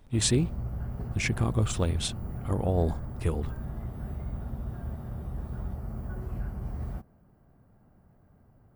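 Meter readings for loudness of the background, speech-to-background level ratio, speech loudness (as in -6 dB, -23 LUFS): -37.5 LUFS, 8.0 dB, -29.5 LUFS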